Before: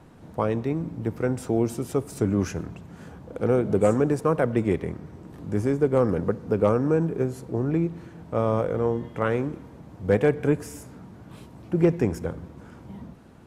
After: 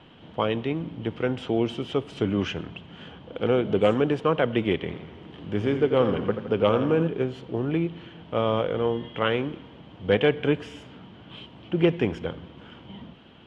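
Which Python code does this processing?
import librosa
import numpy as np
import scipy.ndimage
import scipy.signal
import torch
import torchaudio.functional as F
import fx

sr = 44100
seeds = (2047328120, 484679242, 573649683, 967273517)

y = fx.lowpass_res(x, sr, hz=3100.0, q=10.0)
y = fx.low_shelf(y, sr, hz=120.0, db=-7.5)
y = fx.echo_warbled(y, sr, ms=85, feedback_pct=59, rate_hz=2.8, cents=97, wet_db=-10, at=(4.75, 7.08))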